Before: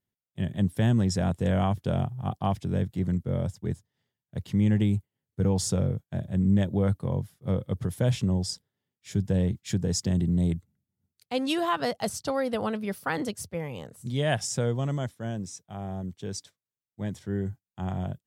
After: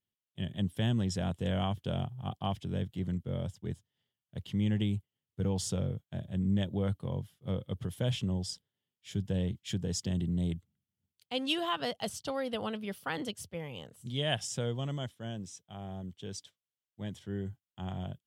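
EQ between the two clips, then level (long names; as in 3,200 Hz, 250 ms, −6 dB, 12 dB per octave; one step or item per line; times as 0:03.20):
parametric band 3,100 Hz +11 dB 0.45 octaves
−7.0 dB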